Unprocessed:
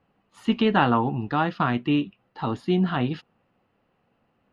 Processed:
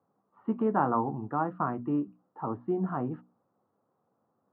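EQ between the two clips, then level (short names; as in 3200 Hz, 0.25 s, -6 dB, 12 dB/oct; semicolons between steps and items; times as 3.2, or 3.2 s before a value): elliptic band-pass 100–1200 Hz, stop band 70 dB; low shelf 150 Hz -7 dB; notches 60/120/180/240/300 Hz; -4.0 dB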